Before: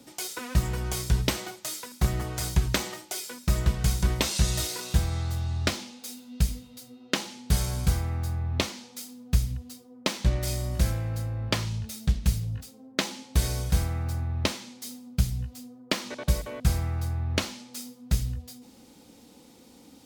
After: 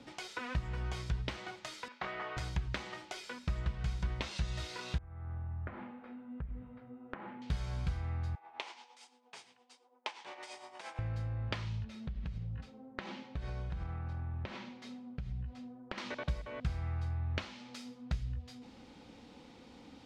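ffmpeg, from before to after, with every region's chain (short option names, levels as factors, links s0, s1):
-filter_complex "[0:a]asettb=1/sr,asplit=3[s0][s1][s2];[s0]atrim=end=1.884[s3];[s1]atrim=start=1.88:end=2.37,asetpts=PTS-STARTPTS,afade=t=in:d=0.004:c=qsin,afade=t=out:st=0.486:d=0.004:c=qsin,highpass=520,lowpass=3000,asplit=2[s4][s5];[s5]adelay=21,volume=0.447[s6];[s4][s6]amix=inputs=2:normalize=0,atrim=end_sample=21609[s7];[s2]atrim=start=2.366[s8];[s3][s7]acrossfade=d=0.004:c1=hsin:c2=qsin[s9];[s9][s8]acrossfade=d=0.004:c1=qsin:c2=hsin,asettb=1/sr,asplit=3[s10][s11][s12];[s10]atrim=end=4.984[s13];[s11]atrim=start=4.98:end=7.42,asetpts=PTS-STARTPTS,afade=t=in:d=0.004:c=qsin,afade=t=out:st=2.436:d=0.004:c=qsin,lowpass=f=1700:w=0.5412,lowpass=f=1700:w=1.3066,acompressor=threshold=0.0112:ratio=5:attack=3.2:release=140:knee=1:detection=peak[s14];[s12]atrim=start=7.416[s15];[s13][s14]acrossfade=d=0.004:c1=hsin:c2=qsin[s16];[s16][s15]acrossfade=d=0.004:c1=qsin:c2=hsin,asettb=1/sr,asplit=3[s17][s18][s19];[s17]atrim=end=8.354[s20];[s18]atrim=start=8.35:end=10.99,asetpts=PTS-STARTPTS,afade=t=in:d=0.004:c=qsin,afade=t=out:st=2.636:d=0.004:c=qsin,highpass=f=430:w=0.5412,highpass=f=430:w=1.3066,equalizer=f=560:t=q:w=4:g=-9,equalizer=f=880:t=q:w=4:g=9,equalizer=f=1300:t=q:w=4:g=-4,equalizer=f=1800:t=q:w=4:g=-3,equalizer=f=4100:t=q:w=4:g=-4,equalizer=f=8700:t=q:w=4:g=6,lowpass=f=9900:w=0.5412,lowpass=f=9900:w=1.3066,tremolo=f=8.7:d=0.64,flanger=delay=4.5:depth=8.4:regen=-74:speed=1.2:shape=sinusoidal[s21];[s19]atrim=start=10.986[s22];[s20][s21]acrossfade=d=0.004:c1=hsin:c2=qsin[s23];[s23][s22]acrossfade=d=0.004:c1=qsin:c2=hsin,asettb=1/sr,asplit=3[s24][s25][s26];[s24]atrim=end=11.844[s27];[s25]atrim=start=11.84:end=15.98,asetpts=PTS-STARTPTS,afade=t=in:d=0.004:c=qsin,afade=t=out:st=4.136:d=0.004:c=qsin,lowpass=f=1800:p=1,aecho=1:1:5.3:0.36,atrim=end_sample=182574,acompressor=threshold=0.0178:ratio=6:attack=3.2:release=140:knee=1:detection=peak[s28];[s26]atrim=start=15.976[s29];[s27][s28]acrossfade=d=0.004:c1=hsin:c2=qsin[s30];[s30][s29]acrossfade=d=0.004:c1=qsin:c2=hsin,acompressor=threshold=0.0126:ratio=3,lowpass=2900,equalizer=f=300:t=o:w=2.7:g=-6.5,volume=1.58"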